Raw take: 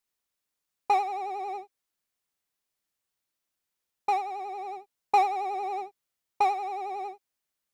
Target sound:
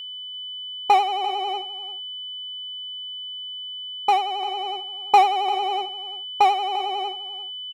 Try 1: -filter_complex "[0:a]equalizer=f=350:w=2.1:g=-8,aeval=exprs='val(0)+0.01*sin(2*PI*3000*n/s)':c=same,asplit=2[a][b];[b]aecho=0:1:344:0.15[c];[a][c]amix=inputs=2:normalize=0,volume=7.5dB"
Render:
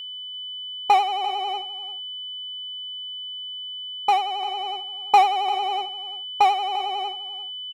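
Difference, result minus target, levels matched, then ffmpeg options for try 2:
250 Hz band -4.5 dB
-filter_complex "[0:a]equalizer=f=350:w=2.1:g=-2,aeval=exprs='val(0)+0.01*sin(2*PI*3000*n/s)':c=same,asplit=2[a][b];[b]aecho=0:1:344:0.15[c];[a][c]amix=inputs=2:normalize=0,volume=7.5dB"

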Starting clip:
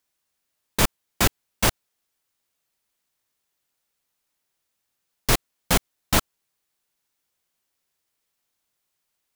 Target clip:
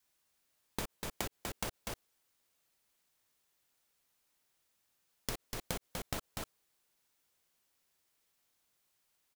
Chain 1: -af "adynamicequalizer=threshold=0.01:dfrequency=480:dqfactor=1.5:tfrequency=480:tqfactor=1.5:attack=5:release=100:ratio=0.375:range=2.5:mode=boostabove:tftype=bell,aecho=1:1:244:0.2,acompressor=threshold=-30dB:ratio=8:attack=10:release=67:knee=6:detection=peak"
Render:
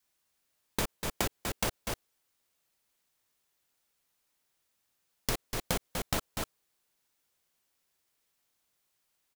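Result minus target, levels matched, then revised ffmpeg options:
compressor: peak gain reduction -8.5 dB
-af "adynamicequalizer=threshold=0.01:dfrequency=480:dqfactor=1.5:tfrequency=480:tqfactor=1.5:attack=5:release=100:ratio=0.375:range=2.5:mode=boostabove:tftype=bell,aecho=1:1:244:0.2,acompressor=threshold=-39.5dB:ratio=8:attack=10:release=67:knee=6:detection=peak"

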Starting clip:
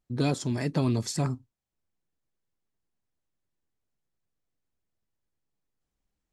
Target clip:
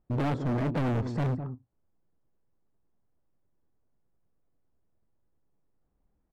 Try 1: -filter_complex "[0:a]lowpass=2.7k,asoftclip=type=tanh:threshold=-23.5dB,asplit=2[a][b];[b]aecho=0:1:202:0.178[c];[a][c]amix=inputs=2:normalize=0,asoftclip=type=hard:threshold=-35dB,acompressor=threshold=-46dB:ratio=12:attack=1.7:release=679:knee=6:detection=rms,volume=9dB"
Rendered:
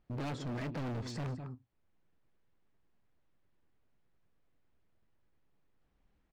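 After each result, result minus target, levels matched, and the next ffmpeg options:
compressor: peak gain reduction +10 dB; 2000 Hz band +3.5 dB
-filter_complex "[0:a]lowpass=2.7k,asoftclip=type=tanh:threshold=-23.5dB,asplit=2[a][b];[b]aecho=0:1:202:0.178[c];[a][c]amix=inputs=2:normalize=0,asoftclip=type=hard:threshold=-35dB,volume=9dB"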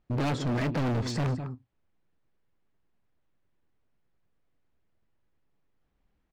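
2000 Hz band +3.5 dB
-filter_complex "[0:a]lowpass=1k,asoftclip=type=tanh:threshold=-23.5dB,asplit=2[a][b];[b]aecho=0:1:202:0.178[c];[a][c]amix=inputs=2:normalize=0,asoftclip=type=hard:threshold=-35dB,volume=9dB"

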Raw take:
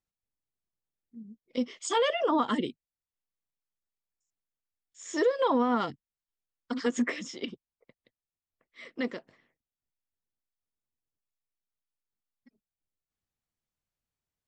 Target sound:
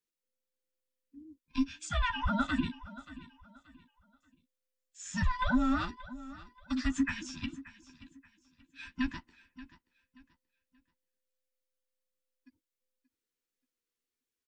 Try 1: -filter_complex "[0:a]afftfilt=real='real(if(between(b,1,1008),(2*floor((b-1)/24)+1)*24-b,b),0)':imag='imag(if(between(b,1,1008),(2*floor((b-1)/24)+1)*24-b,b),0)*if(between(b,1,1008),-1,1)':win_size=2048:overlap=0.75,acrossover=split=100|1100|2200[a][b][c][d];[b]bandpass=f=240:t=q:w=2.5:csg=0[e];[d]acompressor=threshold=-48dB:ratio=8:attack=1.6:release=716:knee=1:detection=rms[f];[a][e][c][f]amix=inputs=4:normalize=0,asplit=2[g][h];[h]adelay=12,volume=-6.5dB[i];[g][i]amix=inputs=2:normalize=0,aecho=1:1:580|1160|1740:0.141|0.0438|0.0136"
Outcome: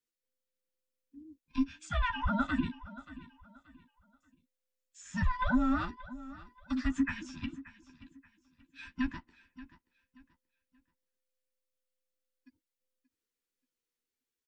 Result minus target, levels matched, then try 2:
compressor: peak gain reduction +8 dB
-filter_complex "[0:a]afftfilt=real='real(if(between(b,1,1008),(2*floor((b-1)/24)+1)*24-b,b),0)':imag='imag(if(between(b,1,1008),(2*floor((b-1)/24)+1)*24-b,b),0)*if(between(b,1,1008),-1,1)':win_size=2048:overlap=0.75,acrossover=split=100|1100|2200[a][b][c][d];[b]bandpass=f=240:t=q:w=2.5:csg=0[e];[d]acompressor=threshold=-39dB:ratio=8:attack=1.6:release=716:knee=1:detection=rms[f];[a][e][c][f]amix=inputs=4:normalize=0,asplit=2[g][h];[h]adelay=12,volume=-6.5dB[i];[g][i]amix=inputs=2:normalize=0,aecho=1:1:580|1160|1740:0.141|0.0438|0.0136"

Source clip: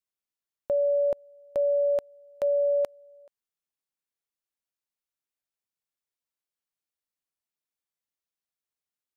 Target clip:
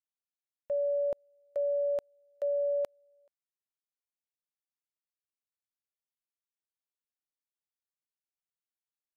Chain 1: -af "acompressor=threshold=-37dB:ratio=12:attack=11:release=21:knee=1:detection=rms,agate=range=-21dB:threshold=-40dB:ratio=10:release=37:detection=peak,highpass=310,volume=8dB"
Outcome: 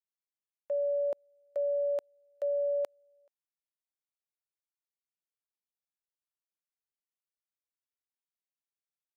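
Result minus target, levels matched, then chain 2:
250 Hz band -3.5 dB
-af "acompressor=threshold=-37dB:ratio=12:attack=11:release=21:knee=1:detection=rms,agate=range=-21dB:threshold=-40dB:ratio=10:release=37:detection=peak,volume=8dB"

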